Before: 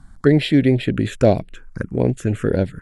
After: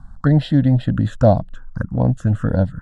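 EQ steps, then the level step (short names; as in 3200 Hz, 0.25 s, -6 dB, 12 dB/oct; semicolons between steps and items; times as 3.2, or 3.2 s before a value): air absorption 58 m; high shelf 3200 Hz -9.5 dB; fixed phaser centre 950 Hz, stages 4; +6.0 dB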